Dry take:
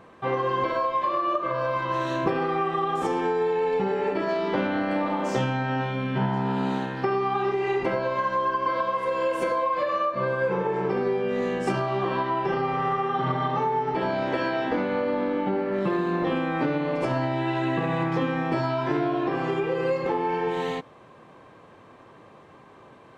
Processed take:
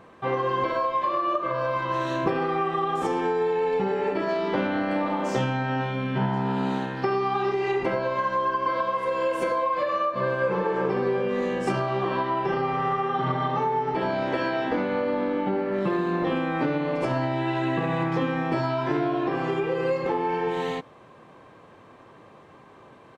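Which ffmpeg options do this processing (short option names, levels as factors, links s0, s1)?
-filter_complex "[0:a]asettb=1/sr,asplit=3[s0][s1][s2];[s0]atrim=end=7.024[s3];[s1]atrim=start=7.02:end=7.72,asetpts=PTS-STARTPTS,afade=t=in:d=0.004:c=qsin,afade=t=out:st=0.696:d=0.004:c=qsin,equalizer=f=4900:t=o:w=0.77:g=5.5[s4];[s2]atrim=start=7.716[s5];[s3][s4]acrossfade=d=0.004:c1=hsin:c2=qsin[s6];[s6][s5]acrossfade=d=0.004:c1=qsin:c2=hsin,asplit=2[s7][s8];[s8]afade=t=in:st=9.77:d=0.01,afade=t=out:st=10.51:d=0.01,aecho=0:1:380|760|1140|1520|1900|2280|2660|3040|3420|3800|4180:0.375837|0.263086|0.18416|0.128912|0.0902386|0.063167|0.0442169|0.0309518|0.0216663|0.0151664|0.0106165[s9];[s7][s9]amix=inputs=2:normalize=0"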